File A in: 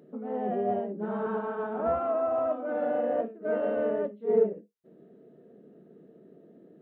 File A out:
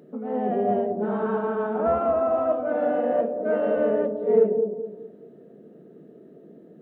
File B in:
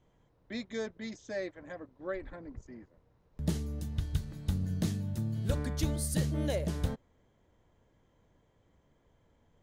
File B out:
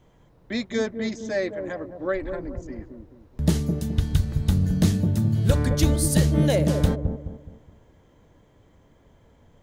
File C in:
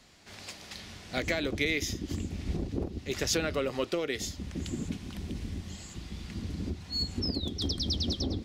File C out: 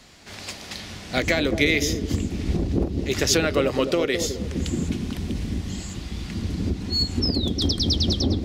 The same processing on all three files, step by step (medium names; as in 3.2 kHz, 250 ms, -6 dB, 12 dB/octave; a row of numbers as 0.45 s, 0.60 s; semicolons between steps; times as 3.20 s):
feedback echo behind a low-pass 211 ms, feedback 36%, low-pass 620 Hz, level -5 dB; normalise loudness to -24 LUFS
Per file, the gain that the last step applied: +5.0 dB, +11.0 dB, +8.5 dB